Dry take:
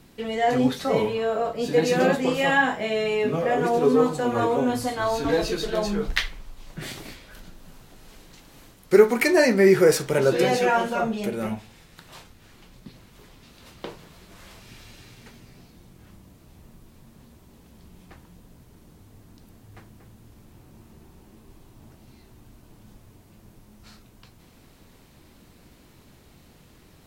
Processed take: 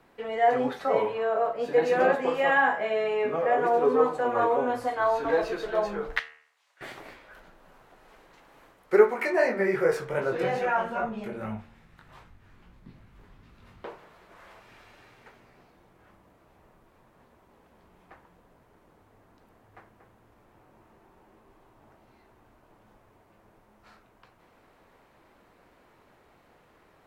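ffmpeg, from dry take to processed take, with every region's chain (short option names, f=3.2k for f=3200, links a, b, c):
-filter_complex "[0:a]asettb=1/sr,asplit=3[a][b][c];[a]atrim=end=6.194[d];[b]atrim=start=6.19:end=6.81,asetpts=PTS-STARTPTS,afade=t=in:d=0.004:c=qsin,afade=t=out:st=0.616:d=0.004:c=qsin,highpass=480,lowpass=7.8k,aderivative[e];[c]atrim=start=6.806[f];[d][e]acrossfade=d=0.004:c1=hsin:c2=qsin[g];[g][f]acrossfade=d=0.004:c1=qsin:c2=hsin,asettb=1/sr,asplit=3[h][i][j];[h]atrim=end=9.104[k];[i]atrim=start=9.1:end=13.85,asetpts=PTS-STARTPTS,afade=t=in:d=0.004:c=qsin,afade=t=out:st=4.746:d=0.004:c=qsin,asubboost=boost=8:cutoff=200,flanger=delay=17.5:depth=4.8:speed=2.5[l];[j]atrim=start=13.846[m];[k][l]acrossfade=d=0.004:c1=hsin:c2=qsin[n];[n][m]acrossfade=d=0.004:c1=qsin:c2=hsin,acrossover=split=430 2100:gain=0.158 1 0.126[o][p][q];[o][p][q]amix=inputs=3:normalize=0,bandreject=f=75.84:t=h:w=4,bandreject=f=151.68:t=h:w=4,bandreject=f=227.52:t=h:w=4,bandreject=f=303.36:t=h:w=4,bandreject=f=379.2:t=h:w=4,bandreject=f=455.04:t=h:w=4,bandreject=f=530.88:t=h:w=4,bandreject=f=606.72:t=h:w=4,bandreject=f=682.56:t=h:w=4,bandreject=f=758.4:t=h:w=4,bandreject=f=834.24:t=h:w=4,bandreject=f=910.08:t=h:w=4,bandreject=f=985.92:t=h:w=4,bandreject=f=1.06176k:t=h:w=4,bandreject=f=1.1376k:t=h:w=4,bandreject=f=1.21344k:t=h:w=4,bandreject=f=1.28928k:t=h:w=4,bandreject=f=1.36512k:t=h:w=4,bandreject=f=1.44096k:t=h:w=4,bandreject=f=1.5168k:t=h:w=4,bandreject=f=1.59264k:t=h:w=4,bandreject=f=1.66848k:t=h:w=4,bandreject=f=1.74432k:t=h:w=4,bandreject=f=1.82016k:t=h:w=4,bandreject=f=1.896k:t=h:w=4,bandreject=f=1.97184k:t=h:w=4,bandreject=f=2.04768k:t=h:w=4,bandreject=f=2.12352k:t=h:w=4,bandreject=f=2.19936k:t=h:w=4,bandreject=f=2.2752k:t=h:w=4,bandreject=f=2.35104k:t=h:w=4,bandreject=f=2.42688k:t=h:w=4,bandreject=f=2.50272k:t=h:w=4,bandreject=f=2.57856k:t=h:w=4,bandreject=f=2.6544k:t=h:w=4,bandreject=f=2.73024k:t=h:w=4,bandreject=f=2.80608k:t=h:w=4,bandreject=f=2.88192k:t=h:w=4,bandreject=f=2.95776k:t=h:w=4,volume=2dB"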